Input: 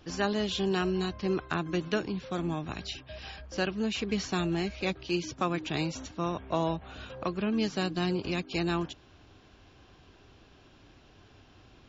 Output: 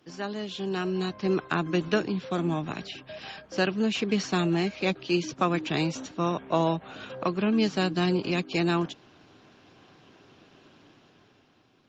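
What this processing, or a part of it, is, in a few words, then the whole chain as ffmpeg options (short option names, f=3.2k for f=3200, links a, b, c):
video call: -filter_complex "[0:a]asettb=1/sr,asplit=3[a][b][c];[a]atrim=end=2.384[d];[b]atrim=start=2.38:end=3.19,asetpts=PTS-STARTPTS,afade=t=in:d=0.004:c=qsin,afade=t=out:st=0.806:d=0.004:c=qsin,acrossover=split=3100[e][f];[f]acompressor=threshold=-47dB:ratio=4:attack=1:release=60[g];[e][g]amix=inputs=2:normalize=0[h];[c]atrim=start=3.186[i];[d][h]acrossfade=d=0.004:c1=hsin:c2=qsin[j];[j][i]acrossfade=d=0.004:c1=qsin:c2=hsin,highpass=f=130:w=0.5412,highpass=f=130:w=1.3066,dynaudnorm=f=150:g=13:m=9.5dB,volume=-4.5dB" -ar 48000 -c:a libopus -b:a 32k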